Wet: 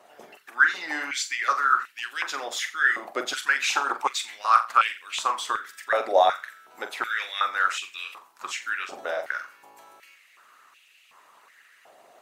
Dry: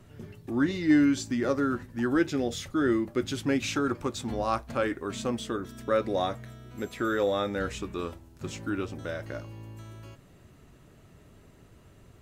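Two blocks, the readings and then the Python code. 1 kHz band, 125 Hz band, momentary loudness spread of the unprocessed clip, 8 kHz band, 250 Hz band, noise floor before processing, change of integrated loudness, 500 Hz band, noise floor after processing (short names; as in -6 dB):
+11.0 dB, under -30 dB, 16 LU, +7.0 dB, -20.0 dB, -56 dBFS, +4.0 dB, -1.5 dB, -58 dBFS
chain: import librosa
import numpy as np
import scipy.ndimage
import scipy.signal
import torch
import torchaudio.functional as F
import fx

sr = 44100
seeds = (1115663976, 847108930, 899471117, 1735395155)

y = fx.room_flutter(x, sr, wall_m=7.4, rt60_s=0.36)
y = fx.hpss(y, sr, part='harmonic', gain_db=-13)
y = fx.filter_held_highpass(y, sr, hz=2.7, low_hz=700.0, high_hz=2600.0)
y = y * librosa.db_to_amplitude(8.0)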